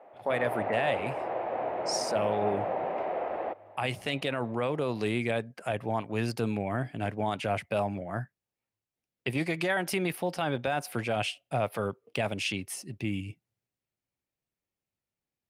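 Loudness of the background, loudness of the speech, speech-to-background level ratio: −33.5 LKFS, −32.0 LKFS, 1.5 dB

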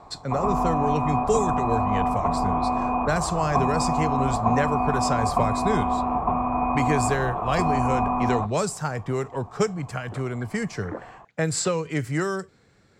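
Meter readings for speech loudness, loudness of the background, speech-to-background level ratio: −27.5 LKFS, −25.0 LKFS, −2.5 dB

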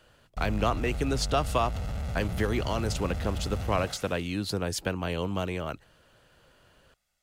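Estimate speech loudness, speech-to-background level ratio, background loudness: −30.5 LKFS, 4.5 dB, −35.0 LKFS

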